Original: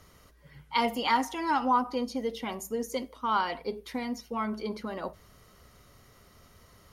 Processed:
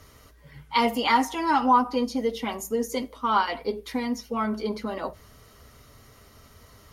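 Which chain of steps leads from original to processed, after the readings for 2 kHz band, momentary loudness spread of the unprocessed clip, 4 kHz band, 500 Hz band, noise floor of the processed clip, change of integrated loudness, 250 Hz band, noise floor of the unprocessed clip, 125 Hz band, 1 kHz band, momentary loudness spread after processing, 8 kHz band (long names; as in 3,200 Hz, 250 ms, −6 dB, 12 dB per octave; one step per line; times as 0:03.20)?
+4.5 dB, 10 LU, +4.5 dB, +5.0 dB, −54 dBFS, +5.0 dB, +5.5 dB, −59 dBFS, +4.5 dB, +5.0 dB, 11 LU, +5.0 dB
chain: notch comb filter 180 Hz
level +6 dB
Ogg Vorbis 64 kbit/s 44,100 Hz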